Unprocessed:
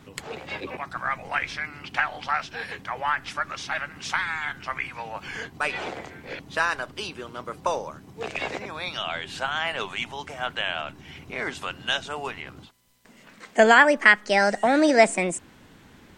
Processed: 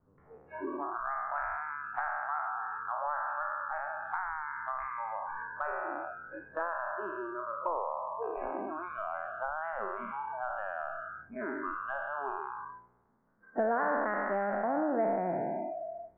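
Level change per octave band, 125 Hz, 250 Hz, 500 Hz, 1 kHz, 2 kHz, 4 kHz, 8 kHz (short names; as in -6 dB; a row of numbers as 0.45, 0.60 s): under -10 dB, -10.0 dB, -8.5 dB, -6.0 dB, -14.0 dB, under -40 dB, under -40 dB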